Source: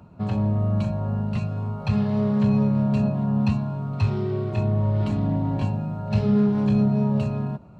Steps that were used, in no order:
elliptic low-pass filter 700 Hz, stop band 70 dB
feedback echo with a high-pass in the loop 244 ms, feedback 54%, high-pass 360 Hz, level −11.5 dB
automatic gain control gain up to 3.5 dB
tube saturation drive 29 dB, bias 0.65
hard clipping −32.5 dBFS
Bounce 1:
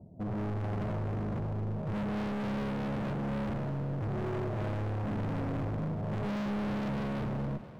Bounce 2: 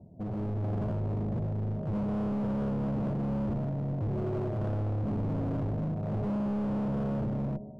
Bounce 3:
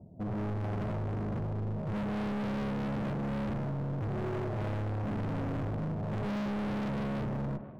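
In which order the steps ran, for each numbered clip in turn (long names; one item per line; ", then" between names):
elliptic low-pass filter, then tube saturation, then automatic gain control, then hard clipping, then feedback echo with a high-pass in the loop
feedback echo with a high-pass in the loop, then tube saturation, then elliptic low-pass filter, then hard clipping, then automatic gain control
elliptic low-pass filter, then tube saturation, then feedback echo with a high-pass in the loop, then automatic gain control, then hard clipping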